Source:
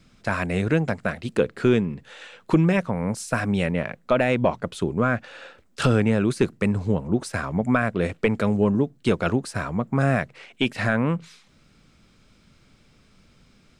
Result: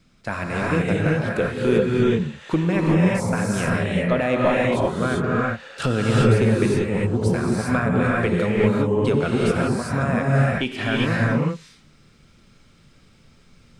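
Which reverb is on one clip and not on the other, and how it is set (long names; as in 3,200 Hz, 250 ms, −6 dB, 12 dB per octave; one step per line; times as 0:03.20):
reverb whose tail is shaped and stops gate 420 ms rising, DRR −4.5 dB
level −3 dB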